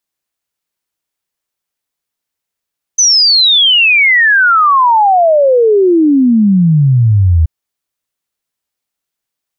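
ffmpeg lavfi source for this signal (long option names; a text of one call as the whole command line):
ffmpeg -f lavfi -i "aevalsrc='0.562*clip(min(t,4.48-t)/0.01,0,1)*sin(2*PI*6200*4.48/log(77/6200)*(exp(log(77/6200)*t/4.48)-1))':duration=4.48:sample_rate=44100" out.wav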